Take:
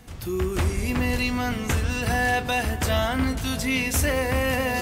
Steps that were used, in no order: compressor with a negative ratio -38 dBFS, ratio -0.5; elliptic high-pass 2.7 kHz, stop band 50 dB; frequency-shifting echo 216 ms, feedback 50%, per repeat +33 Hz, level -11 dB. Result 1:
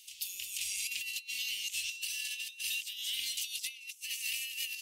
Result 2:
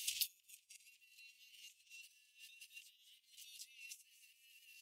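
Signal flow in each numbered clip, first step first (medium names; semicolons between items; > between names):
elliptic high-pass > frequency-shifting echo > compressor with a negative ratio; frequency-shifting echo > compressor with a negative ratio > elliptic high-pass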